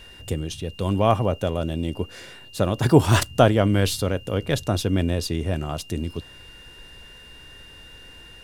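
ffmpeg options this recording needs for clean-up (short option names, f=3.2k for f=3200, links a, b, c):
-af "bandreject=f=2.8k:w=30"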